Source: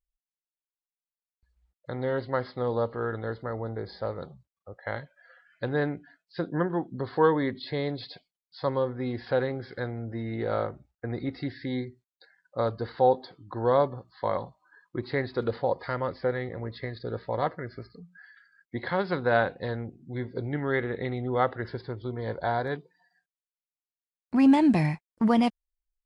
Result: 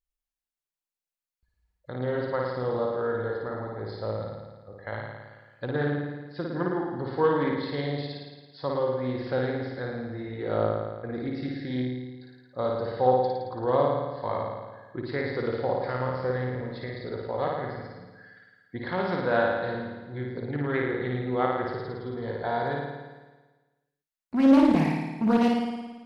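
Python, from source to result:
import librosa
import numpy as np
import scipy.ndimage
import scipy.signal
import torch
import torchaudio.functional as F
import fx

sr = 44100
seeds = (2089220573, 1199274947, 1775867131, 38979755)

y = fx.room_flutter(x, sr, wall_m=9.5, rt60_s=1.3)
y = fx.doppler_dist(y, sr, depth_ms=0.34)
y = y * 10.0 ** (-3.0 / 20.0)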